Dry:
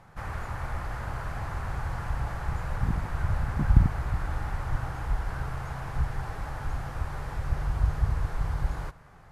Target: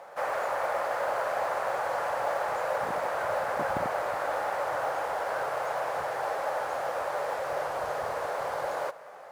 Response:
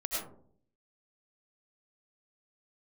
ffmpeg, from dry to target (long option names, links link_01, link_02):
-af "highpass=frequency=560:width_type=q:width=4.9,acrusher=bits=8:mode=log:mix=0:aa=0.000001,volume=5dB"